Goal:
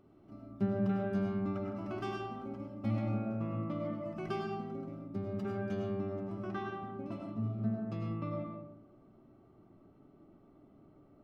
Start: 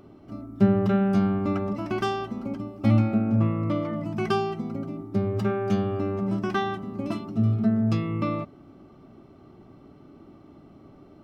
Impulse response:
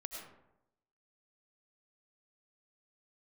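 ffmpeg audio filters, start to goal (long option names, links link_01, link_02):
-filter_complex "[0:a]asetnsamples=nb_out_samples=441:pad=0,asendcmd='6.32 highshelf g -12',highshelf=frequency=3300:gain=-4.5[link_01];[1:a]atrim=start_sample=2205[link_02];[link_01][link_02]afir=irnorm=-1:irlink=0,volume=-8.5dB"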